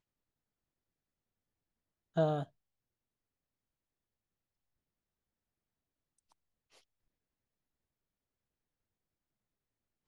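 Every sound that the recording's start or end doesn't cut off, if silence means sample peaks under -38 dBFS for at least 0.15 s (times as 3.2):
2.17–2.43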